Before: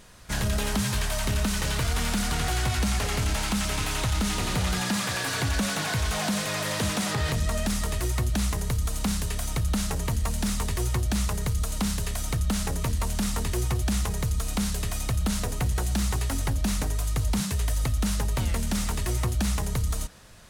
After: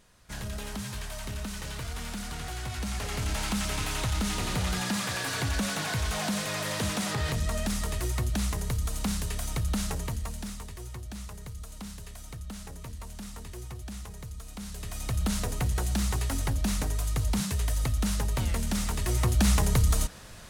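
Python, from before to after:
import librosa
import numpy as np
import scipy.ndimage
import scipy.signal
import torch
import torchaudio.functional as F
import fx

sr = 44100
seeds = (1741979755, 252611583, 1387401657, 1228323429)

y = fx.gain(x, sr, db=fx.line((2.62, -10.0), (3.43, -3.0), (9.9, -3.0), (10.73, -14.0), (14.56, -14.0), (15.2, -2.0), (18.96, -2.0), (19.5, 4.0)))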